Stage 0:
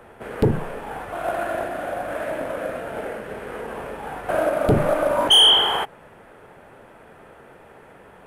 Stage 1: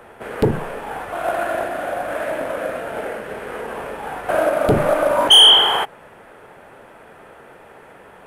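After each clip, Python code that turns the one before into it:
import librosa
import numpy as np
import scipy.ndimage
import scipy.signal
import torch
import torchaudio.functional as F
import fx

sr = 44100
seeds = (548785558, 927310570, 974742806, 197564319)

y = fx.low_shelf(x, sr, hz=290.0, db=-6.0)
y = F.gain(torch.from_numpy(y), 4.5).numpy()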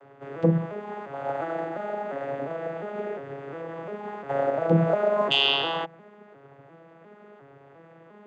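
y = fx.vocoder_arp(x, sr, chord='minor triad', root=49, every_ms=352)
y = F.gain(torch.from_numpy(y), -7.0).numpy()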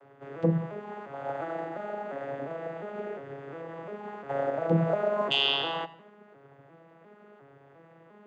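y = fx.echo_feedback(x, sr, ms=86, feedback_pct=41, wet_db=-18.0)
y = F.gain(torch.from_numpy(y), -4.0).numpy()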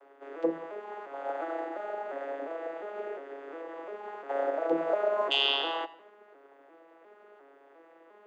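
y = scipy.signal.sosfilt(scipy.signal.cheby1(4, 1.0, 300.0, 'highpass', fs=sr, output='sos'), x)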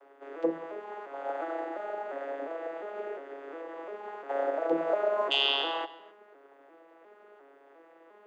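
y = x + 10.0 ** (-22.5 / 20.0) * np.pad(x, (int(267 * sr / 1000.0), 0))[:len(x)]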